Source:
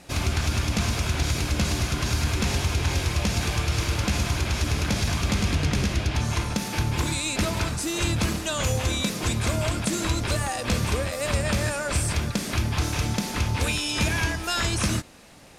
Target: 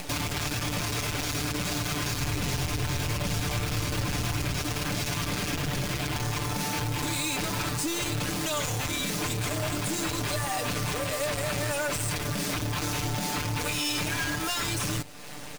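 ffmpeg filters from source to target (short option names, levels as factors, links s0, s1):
-filter_complex "[0:a]highpass=55,bandreject=f=50:t=h:w=6,bandreject=f=100:t=h:w=6,bandreject=f=150:t=h:w=6,asoftclip=type=tanh:threshold=0.0237,acrusher=bits=7:dc=4:mix=0:aa=0.000001,aecho=1:1:6.8:0.69,acompressor=mode=upward:threshold=0.0158:ratio=2.5,asettb=1/sr,asplit=3[s0][s1][s2];[s0]atrim=end=2.204[s3];[s1]atrim=start=2.2:end=4.62,asetpts=PTS-STARTPTS,afade=t=in:d=0.004:c=qsin,afade=t=out:st=2.416:d=0.004:c=qsin,lowshelf=f=190:g=7[s4];[s2]atrim=start=4.616[s5];[s3][s4]acrossfade=d=0.004:c1=hsin:c2=qsin[s6];[s6][s5]acrossfade=d=0.004:c1=qsin:c2=hsin,acompressor=threshold=0.0224:ratio=2.5,volume=1.88"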